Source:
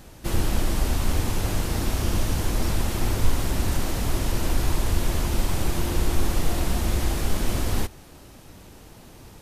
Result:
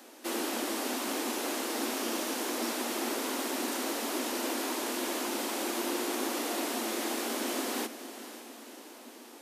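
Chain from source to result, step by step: steep high-pass 230 Hz 96 dB/octave; on a send: echo that smears into a reverb 528 ms, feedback 56%, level -13 dB; on the sum: trim -2 dB

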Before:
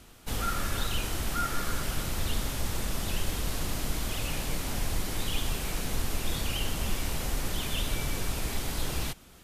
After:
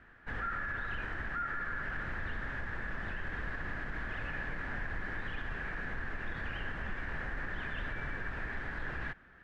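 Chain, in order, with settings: resonant low-pass 1.7 kHz, resonance Q 10; peak limiter -20.5 dBFS, peak gain reduction 8.5 dB; trim -8 dB

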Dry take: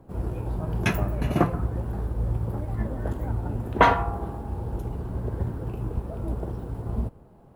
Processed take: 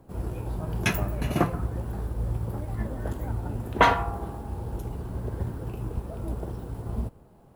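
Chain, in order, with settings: treble shelf 2.6 kHz +8 dB; trim -2.5 dB

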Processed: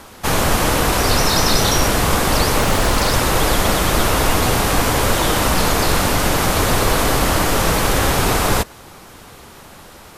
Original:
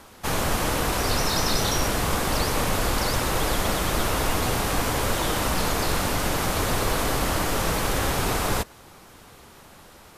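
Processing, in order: 2.58–3.12 s: loudspeaker Doppler distortion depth 0.47 ms; trim +8 dB

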